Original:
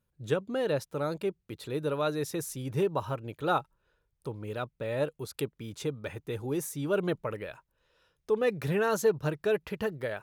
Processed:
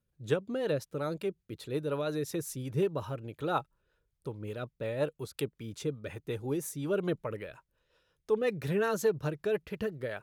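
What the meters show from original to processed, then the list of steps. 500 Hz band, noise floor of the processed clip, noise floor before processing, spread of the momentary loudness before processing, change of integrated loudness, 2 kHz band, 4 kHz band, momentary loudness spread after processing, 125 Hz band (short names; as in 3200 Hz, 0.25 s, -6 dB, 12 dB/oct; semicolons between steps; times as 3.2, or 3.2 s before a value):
-2.0 dB, -81 dBFS, -79 dBFS, 9 LU, -2.0 dB, -3.5 dB, -3.0 dB, 10 LU, -1.5 dB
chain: rotary speaker horn 5.5 Hz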